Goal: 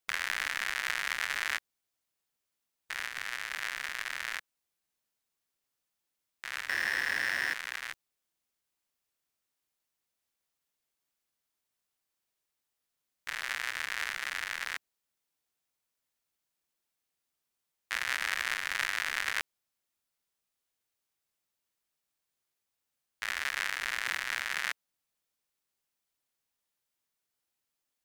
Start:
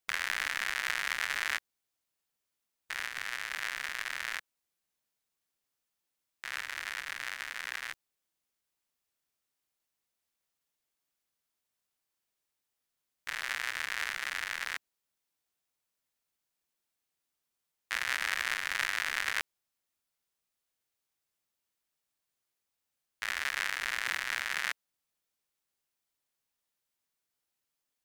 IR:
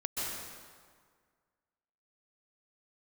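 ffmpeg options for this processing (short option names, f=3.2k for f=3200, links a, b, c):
-filter_complex "[0:a]asettb=1/sr,asplit=3[a][b][c];[a]atrim=end=6.694[d];[b]atrim=start=6.69:end=7.54,asetpts=PTS-STARTPTS,afade=t=in:d=0.004:c=qsin,afade=t=out:st=0.846:d=0.004:c=qsin,asplit=2[e][f];[f]highpass=f=720:p=1,volume=35dB,asoftclip=type=tanh:threshold=-18.5dB[g];[e][g]amix=inputs=2:normalize=0,lowpass=f=3.5k:p=1,volume=-6dB[h];[c]atrim=start=7.536[i];[d][h]acrossfade=d=0.004:c1=hsin:c2=qsin[j];[j][i]acrossfade=d=0.004:c1=qsin:c2=hsin"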